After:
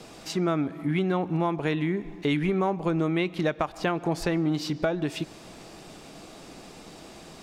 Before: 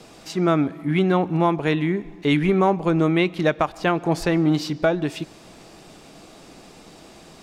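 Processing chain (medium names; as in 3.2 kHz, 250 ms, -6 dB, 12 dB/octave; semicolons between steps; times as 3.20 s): compression 2.5:1, threshold -25 dBFS, peak gain reduction 8 dB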